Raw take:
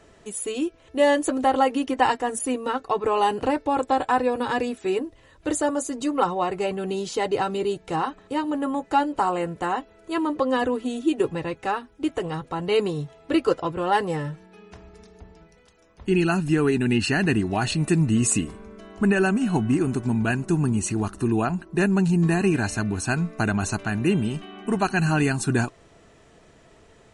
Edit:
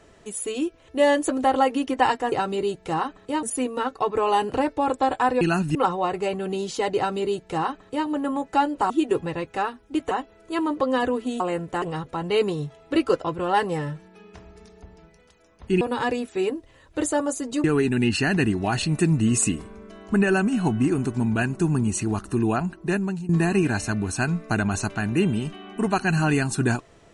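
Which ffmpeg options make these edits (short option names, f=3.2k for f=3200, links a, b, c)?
-filter_complex "[0:a]asplit=12[a][b][c][d][e][f][g][h][i][j][k][l];[a]atrim=end=2.322[m];[b]atrim=start=7.338:end=8.452[n];[c]atrim=start=2.318:end=4.302[o];[d]atrim=start=16.188:end=16.532[p];[e]atrim=start=6.128:end=9.282[q];[f]atrim=start=10.988:end=12.202[r];[g]atrim=start=9.698:end=10.992[s];[h]atrim=start=9.278:end=9.702[t];[i]atrim=start=12.198:end=16.192[u];[j]atrim=start=4.298:end=6.132[v];[k]atrim=start=16.528:end=22.18,asetpts=PTS-STARTPTS,afade=t=out:st=5.132:d=0.52:silence=0.133352[w];[l]atrim=start=22.18,asetpts=PTS-STARTPTS,afade=t=in:d=0.004:c=hsin:silence=0.133352[x];[m][n]acrossfade=d=0.004:c1=hsin:c2=hsin[y];[y][o]acrossfade=d=0.004:c1=hsin:c2=hsin[z];[z][p]acrossfade=d=0.004:c1=hsin:c2=hsin[aa];[aa][q]acrossfade=d=0.004:c1=hsin:c2=hsin[ab];[ab][r]acrossfade=d=0.004:c1=hsin:c2=hsin[ac];[ac][s]acrossfade=d=0.004:c1=hsin:c2=hsin[ad];[ad][t]acrossfade=d=0.004:c1=hsin:c2=hsin[ae];[ae][u]acrossfade=d=0.004:c1=hsin:c2=hsin[af];[af][v]acrossfade=d=0.004:c1=hsin:c2=hsin[ag];[w][x]concat=n=2:v=0:a=1[ah];[ag][ah]acrossfade=d=0.004:c1=hsin:c2=hsin"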